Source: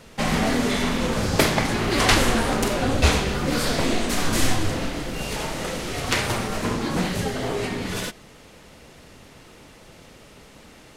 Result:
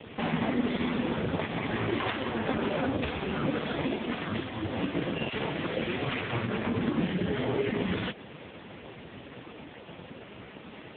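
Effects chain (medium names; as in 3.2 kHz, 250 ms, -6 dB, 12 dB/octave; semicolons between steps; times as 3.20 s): compression 20:1, threshold -28 dBFS, peak gain reduction 17 dB; 5.29–7.72 s: bands offset in time highs, lows 40 ms, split 870 Hz; trim +7.5 dB; AMR-NB 4.75 kbps 8 kHz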